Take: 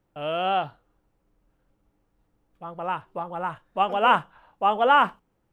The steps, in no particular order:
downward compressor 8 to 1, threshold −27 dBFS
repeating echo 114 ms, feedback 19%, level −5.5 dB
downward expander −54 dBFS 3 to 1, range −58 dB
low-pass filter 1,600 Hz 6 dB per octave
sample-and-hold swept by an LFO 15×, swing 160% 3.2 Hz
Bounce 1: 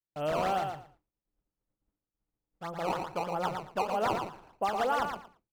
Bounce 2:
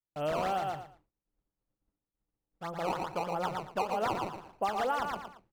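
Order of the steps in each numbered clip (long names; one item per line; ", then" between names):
sample-and-hold swept by an LFO, then low-pass filter, then downward compressor, then repeating echo, then downward expander
sample-and-hold swept by an LFO, then repeating echo, then downward expander, then downward compressor, then low-pass filter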